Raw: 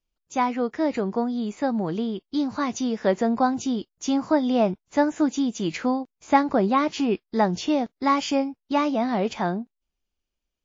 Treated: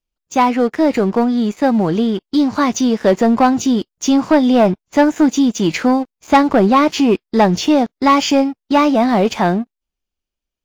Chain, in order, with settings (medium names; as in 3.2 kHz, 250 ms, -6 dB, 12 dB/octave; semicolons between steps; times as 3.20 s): waveshaping leveller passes 2; trim +3.5 dB